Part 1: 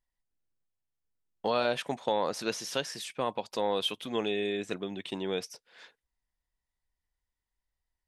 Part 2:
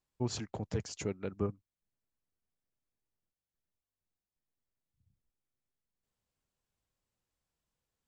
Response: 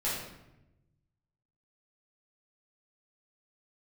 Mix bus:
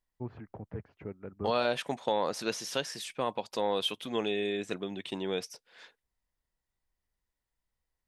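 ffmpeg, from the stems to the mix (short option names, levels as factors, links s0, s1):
-filter_complex "[0:a]volume=0.944[s0];[1:a]lowpass=f=2000:w=0.5412,lowpass=f=2000:w=1.3066,volume=0.562[s1];[s0][s1]amix=inputs=2:normalize=0"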